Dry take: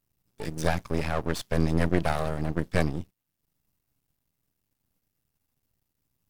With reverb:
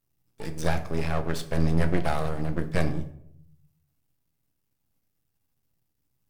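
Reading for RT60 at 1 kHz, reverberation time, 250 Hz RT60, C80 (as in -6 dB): 0.60 s, 0.70 s, 0.90 s, 15.5 dB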